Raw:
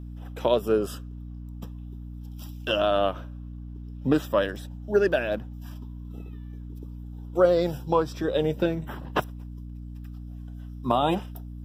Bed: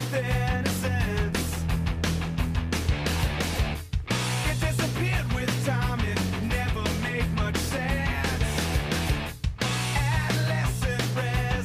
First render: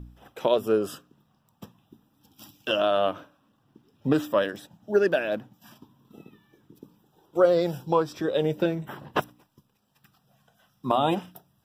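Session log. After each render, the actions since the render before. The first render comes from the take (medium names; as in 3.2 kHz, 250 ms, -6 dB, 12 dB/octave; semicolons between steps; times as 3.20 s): de-hum 60 Hz, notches 5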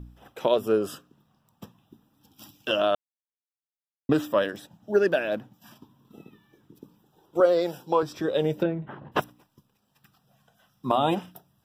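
2.95–4.09 s: mute; 7.40–8.03 s: high-pass 270 Hz; 8.63–9.12 s: distance through air 440 m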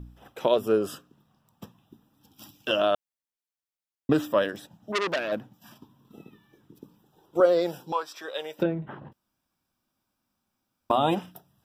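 4.92–5.32 s: transformer saturation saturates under 3.1 kHz; 7.92–8.59 s: high-pass 890 Hz; 9.13–10.90 s: room tone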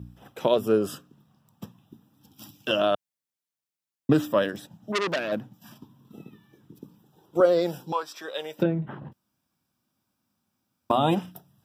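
high-pass 100 Hz; tone controls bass +7 dB, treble +2 dB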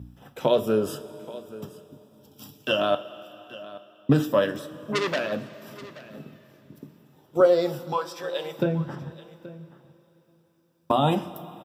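delay 828 ms -18 dB; two-slope reverb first 0.23 s, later 3.8 s, from -19 dB, DRR 7 dB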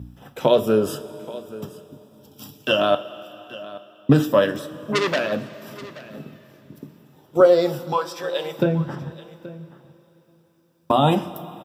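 trim +4.5 dB; peak limiter -3 dBFS, peak gain reduction 1.5 dB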